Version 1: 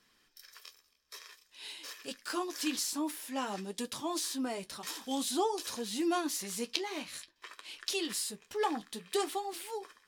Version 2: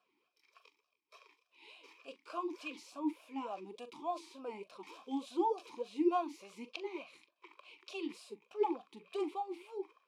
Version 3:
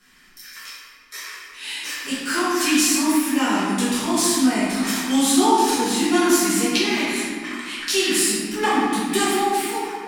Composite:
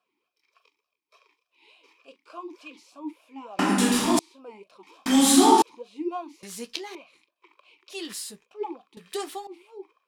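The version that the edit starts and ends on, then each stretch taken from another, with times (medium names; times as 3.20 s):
2
3.59–4.19 s: from 3
5.06–5.62 s: from 3
6.43–6.95 s: from 1
7.94–8.42 s: from 1, crossfade 0.10 s
8.97–9.47 s: from 1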